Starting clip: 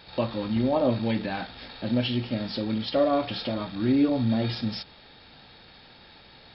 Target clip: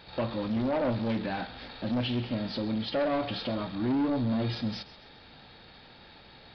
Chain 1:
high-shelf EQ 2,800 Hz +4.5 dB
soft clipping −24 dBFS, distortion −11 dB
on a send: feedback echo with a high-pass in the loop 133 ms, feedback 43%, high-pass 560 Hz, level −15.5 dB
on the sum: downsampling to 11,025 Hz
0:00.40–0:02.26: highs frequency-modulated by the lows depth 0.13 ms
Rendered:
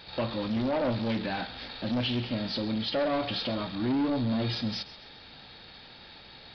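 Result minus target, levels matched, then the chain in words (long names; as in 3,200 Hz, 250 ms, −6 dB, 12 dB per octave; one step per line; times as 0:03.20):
4,000 Hz band +4.0 dB
high-shelf EQ 2,800 Hz −4 dB
soft clipping −24 dBFS, distortion −11 dB
on a send: feedback echo with a high-pass in the loop 133 ms, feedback 43%, high-pass 560 Hz, level −15.5 dB
on the sum: downsampling to 11,025 Hz
0:00.40–0:02.26: highs frequency-modulated by the lows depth 0.13 ms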